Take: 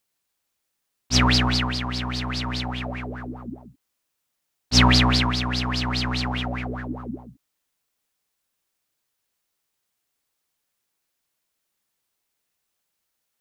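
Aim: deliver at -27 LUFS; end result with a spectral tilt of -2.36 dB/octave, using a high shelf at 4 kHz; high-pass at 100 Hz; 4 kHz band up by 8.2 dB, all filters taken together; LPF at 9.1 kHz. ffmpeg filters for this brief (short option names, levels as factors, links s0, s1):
-af "highpass=100,lowpass=9100,highshelf=f=4000:g=9,equalizer=f=4000:t=o:g=4.5,volume=0.299"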